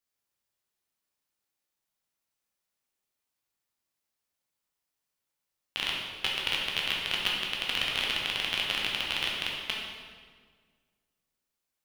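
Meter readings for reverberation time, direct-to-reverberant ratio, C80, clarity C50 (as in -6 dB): 1.7 s, -3.0 dB, 2.5 dB, 0.5 dB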